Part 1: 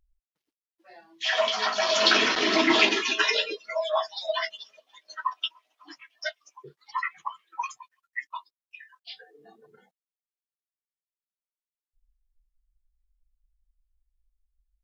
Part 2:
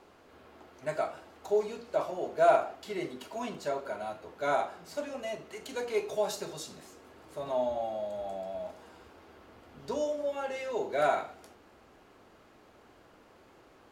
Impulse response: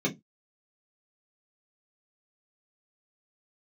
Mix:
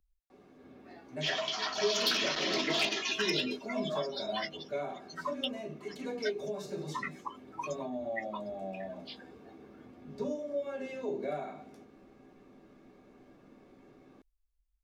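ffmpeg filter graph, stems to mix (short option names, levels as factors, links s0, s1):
-filter_complex "[0:a]acrossover=split=200|3000[s0][s1][s2];[s1]acompressor=threshold=0.0316:ratio=4[s3];[s0][s3][s2]amix=inputs=3:normalize=0,asoftclip=type=hard:threshold=0.126,volume=0.562[s4];[1:a]acompressor=threshold=0.0251:ratio=6,adelay=300,volume=0.447,asplit=2[s5][s6];[s6]volume=0.501[s7];[2:a]atrim=start_sample=2205[s8];[s7][s8]afir=irnorm=-1:irlink=0[s9];[s4][s5][s9]amix=inputs=3:normalize=0"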